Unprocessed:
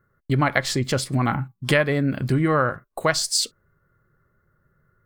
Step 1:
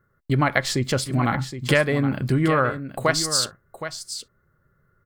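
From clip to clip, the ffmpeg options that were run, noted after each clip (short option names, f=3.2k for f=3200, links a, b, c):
-af "aecho=1:1:768:0.282"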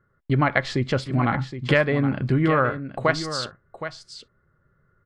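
-af "lowpass=3.3k"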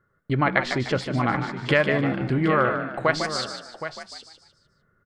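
-filter_complex "[0:a]lowshelf=f=230:g=-5,asplit=2[a][b];[b]asplit=4[c][d][e][f];[c]adelay=150,afreqshift=55,volume=-8dB[g];[d]adelay=300,afreqshift=110,volume=-16.6dB[h];[e]adelay=450,afreqshift=165,volume=-25.3dB[i];[f]adelay=600,afreqshift=220,volume=-33.9dB[j];[g][h][i][j]amix=inputs=4:normalize=0[k];[a][k]amix=inputs=2:normalize=0"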